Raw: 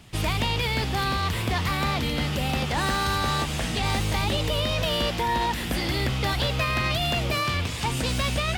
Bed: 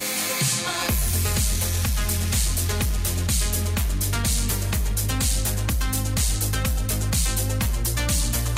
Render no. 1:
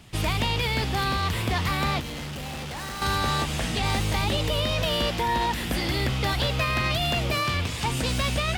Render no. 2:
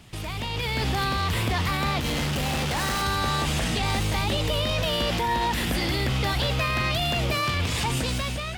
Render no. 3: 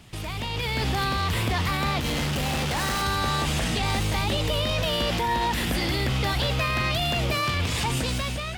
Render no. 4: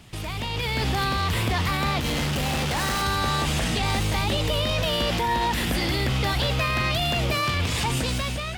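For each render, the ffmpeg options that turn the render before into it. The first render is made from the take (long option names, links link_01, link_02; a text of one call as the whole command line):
ffmpeg -i in.wav -filter_complex "[0:a]asettb=1/sr,asplit=3[link_01][link_02][link_03];[link_01]atrim=end=2.004[link_04];[link_02]atrim=start=2:end=3.02,asetpts=PTS-STARTPTS,afade=type=in:duration=0.004:curve=qsin,afade=type=out:start_time=1.016:duration=0.004:curve=qsin,asoftclip=type=hard:threshold=-33dB[link_05];[link_03]atrim=start=3.016[link_06];[link_04][link_05]acrossfade=duration=0.004:curve1=hsin:curve2=qsin[link_07];[link_07][link_06]acrossfade=duration=0.004:curve1=qsin:curve2=hsin" out.wav
ffmpeg -i in.wav -af "alimiter=level_in=1dB:limit=-24dB:level=0:latency=1:release=63,volume=-1dB,dynaudnorm=framelen=170:gausssize=7:maxgain=8dB" out.wav
ffmpeg -i in.wav -af anull out.wav
ffmpeg -i in.wav -af "volume=1dB" out.wav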